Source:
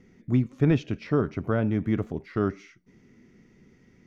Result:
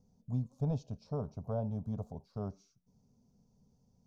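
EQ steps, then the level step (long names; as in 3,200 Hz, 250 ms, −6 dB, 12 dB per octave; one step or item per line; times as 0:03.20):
flat-topped bell 2,000 Hz −15 dB
phaser with its sweep stopped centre 820 Hz, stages 4
dynamic equaliser 660 Hz, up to +3 dB, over −42 dBFS, Q 0.9
−7.5 dB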